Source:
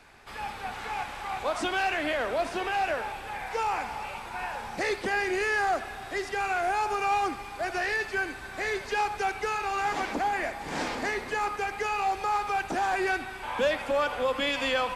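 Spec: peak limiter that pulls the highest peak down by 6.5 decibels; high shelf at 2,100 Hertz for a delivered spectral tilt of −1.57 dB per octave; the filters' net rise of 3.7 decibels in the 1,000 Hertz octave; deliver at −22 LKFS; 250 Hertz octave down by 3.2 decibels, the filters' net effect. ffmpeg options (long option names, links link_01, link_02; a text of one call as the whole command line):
ffmpeg -i in.wav -af "equalizer=frequency=250:width_type=o:gain=-5.5,equalizer=frequency=1000:width_type=o:gain=4,highshelf=frequency=2100:gain=7,volume=5.5dB,alimiter=limit=-13dB:level=0:latency=1" out.wav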